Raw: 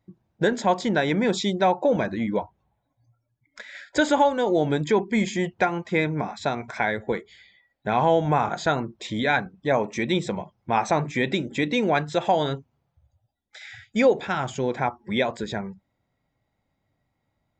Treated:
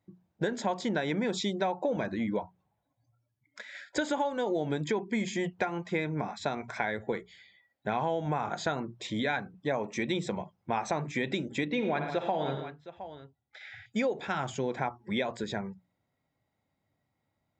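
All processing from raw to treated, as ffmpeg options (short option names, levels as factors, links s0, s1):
-filter_complex "[0:a]asettb=1/sr,asplit=3[s0][s1][s2];[s0]atrim=end=11.654[s3];[s1]atrim=start=11.65:end=13.86,asetpts=PTS-STARTPTS,afade=t=in:d=0.004:c=qsin,afade=t=out:st=2.206:d=0.004:c=qsin,lowpass=3300,aecho=1:1:57|84|116|172|714:0.282|0.2|0.211|0.178|0.126,atrim=end_sample=97461[s4];[s2]atrim=start=13.856[s5];[s3][s4]acrossfade=d=0.004:c1=hsin:c2=qsin[s6];[s6][s5]acrossfade=d=0.004:c1=qsin:c2=hsin,highpass=69,bandreject=f=60:t=h:w=6,bandreject=f=120:t=h:w=6,bandreject=f=180:t=h:w=6,acompressor=threshold=0.0794:ratio=6,volume=0.631"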